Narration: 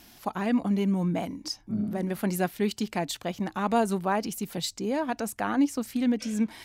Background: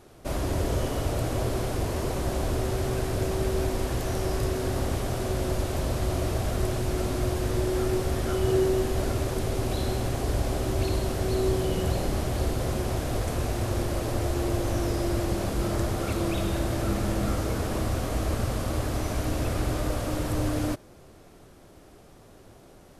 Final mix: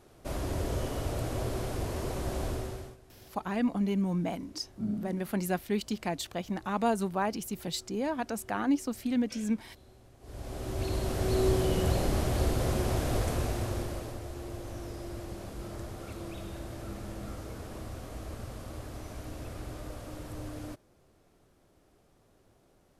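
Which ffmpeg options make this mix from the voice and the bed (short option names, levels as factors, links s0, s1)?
-filter_complex "[0:a]adelay=3100,volume=0.668[s0];[1:a]volume=13.3,afade=t=out:st=2.46:d=0.51:silence=0.0668344,afade=t=in:st=10.2:d=1.22:silence=0.0398107,afade=t=out:st=13.18:d=1.02:silence=0.237137[s1];[s0][s1]amix=inputs=2:normalize=0"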